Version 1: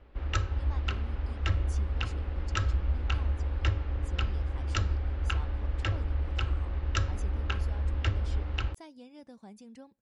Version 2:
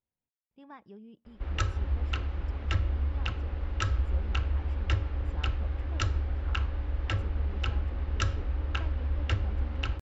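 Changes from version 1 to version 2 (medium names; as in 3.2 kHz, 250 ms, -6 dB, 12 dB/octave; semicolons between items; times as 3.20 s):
speech: add Savitzky-Golay filter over 25 samples; background: entry +1.25 s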